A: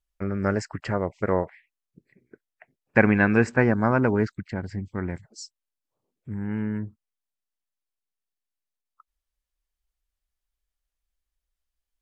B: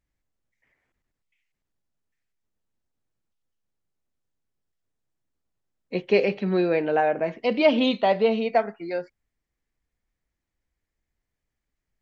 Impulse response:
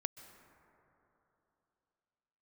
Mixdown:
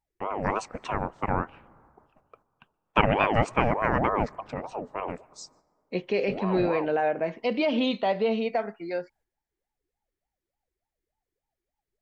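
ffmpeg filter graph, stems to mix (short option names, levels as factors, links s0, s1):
-filter_complex "[0:a]aeval=exprs='val(0)*sin(2*PI*610*n/s+610*0.45/3.4*sin(2*PI*3.4*n/s))':c=same,volume=0.794,asplit=2[s0][s1];[s1]volume=0.224[s2];[1:a]alimiter=limit=0.188:level=0:latency=1:release=66,volume=0.794[s3];[2:a]atrim=start_sample=2205[s4];[s2][s4]afir=irnorm=-1:irlink=0[s5];[s0][s3][s5]amix=inputs=3:normalize=0,agate=range=0.501:threshold=0.00112:ratio=16:detection=peak"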